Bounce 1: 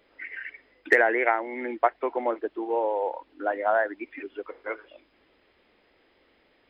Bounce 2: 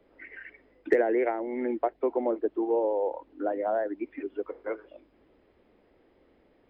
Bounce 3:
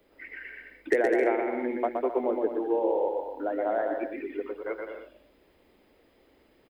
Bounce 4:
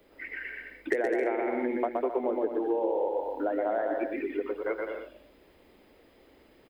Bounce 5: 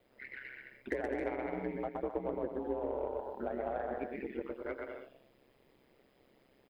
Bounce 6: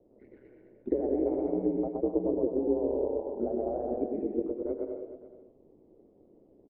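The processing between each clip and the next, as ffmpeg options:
-filter_complex "[0:a]tiltshelf=f=1100:g=9,acrossover=split=180|610|2600[s0][s1][s2][s3];[s2]acompressor=threshold=0.0251:ratio=6[s4];[s0][s1][s4][s3]amix=inputs=4:normalize=0,volume=0.668"
-af "crystalizer=i=4:c=0,aecho=1:1:120|204|262.8|304|332.8:0.631|0.398|0.251|0.158|0.1,volume=0.794"
-af "acompressor=threshold=0.0355:ratio=4,volume=1.5"
-af "aeval=exprs='0.237*(cos(1*acos(clip(val(0)/0.237,-1,1)))-cos(1*PI/2))+0.00668*(cos(8*acos(clip(val(0)/0.237,-1,1)))-cos(8*PI/2))':c=same,aeval=exprs='val(0)*sin(2*PI*66*n/s)':c=same,volume=0.531"
-filter_complex "[0:a]firequalizer=gain_entry='entry(160,0);entry(320,7);entry(1600,-30)':delay=0.05:min_phase=1,asplit=2[s0][s1];[s1]aecho=0:1:101|211|429:0.282|0.112|0.188[s2];[s0][s2]amix=inputs=2:normalize=0,volume=1.68"

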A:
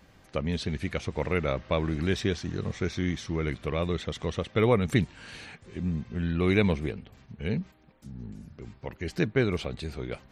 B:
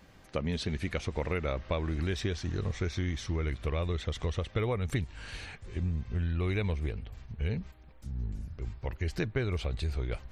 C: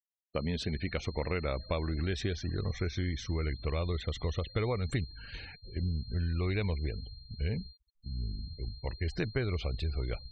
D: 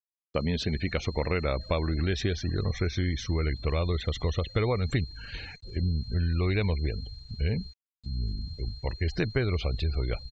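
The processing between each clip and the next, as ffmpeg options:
-af "asubboost=boost=9:cutoff=63,acompressor=threshold=0.0447:ratio=6"
-af "aeval=exprs='val(0)+0.00316*sin(2*PI*4200*n/s)':c=same,agate=range=0.0224:threshold=0.01:ratio=3:detection=peak,afftfilt=real='re*gte(hypot(re,im),0.00631)':imag='im*gte(hypot(re,im),0.00631)':win_size=1024:overlap=0.75,volume=0.891"
-af "aeval=exprs='val(0)*gte(abs(val(0)),0.00133)':c=same,aresample=16000,aresample=44100,volume=1.78"

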